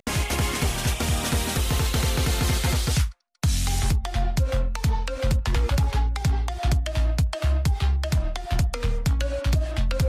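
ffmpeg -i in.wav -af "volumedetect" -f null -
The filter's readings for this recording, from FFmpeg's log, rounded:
mean_volume: -22.6 dB
max_volume: -13.3 dB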